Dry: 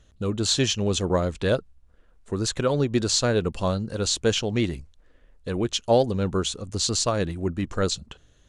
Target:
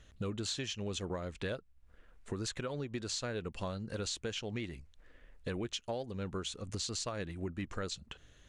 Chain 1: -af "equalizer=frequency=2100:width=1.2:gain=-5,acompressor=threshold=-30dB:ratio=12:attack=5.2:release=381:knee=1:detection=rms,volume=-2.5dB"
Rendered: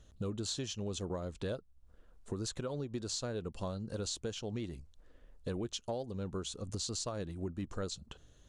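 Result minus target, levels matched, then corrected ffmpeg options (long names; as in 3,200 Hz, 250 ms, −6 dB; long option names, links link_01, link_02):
2,000 Hz band −7.0 dB
-af "equalizer=frequency=2100:width=1.2:gain=6.5,acompressor=threshold=-30dB:ratio=12:attack=5.2:release=381:knee=1:detection=rms,volume=-2.5dB"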